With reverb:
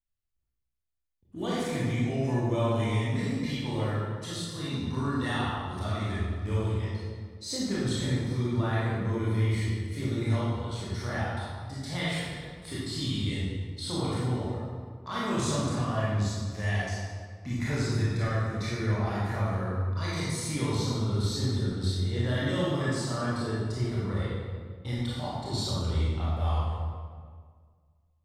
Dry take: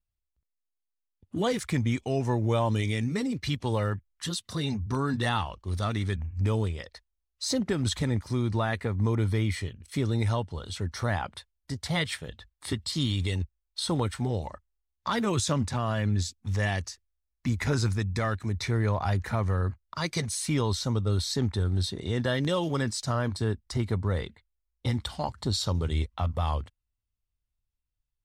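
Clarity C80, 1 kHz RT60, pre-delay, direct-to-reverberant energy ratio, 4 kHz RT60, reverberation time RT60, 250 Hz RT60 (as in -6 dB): -0.5 dB, 1.7 s, 22 ms, -8.5 dB, 1.2 s, 1.8 s, 2.1 s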